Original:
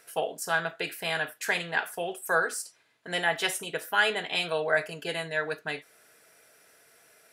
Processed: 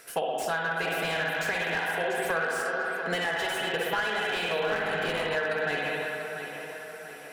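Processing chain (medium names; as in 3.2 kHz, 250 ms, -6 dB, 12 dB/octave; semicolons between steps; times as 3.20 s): 4.63–5.25 s: cycle switcher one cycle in 3, muted; spring tank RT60 1.8 s, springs 56/60 ms, chirp 55 ms, DRR -1 dB; compression 8:1, threshold -32 dBFS, peak gain reduction 14.5 dB; tape echo 691 ms, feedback 52%, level -8 dB, low-pass 3.3 kHz; slew-rate limiter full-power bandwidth 46 Hz; trim +6.5 dB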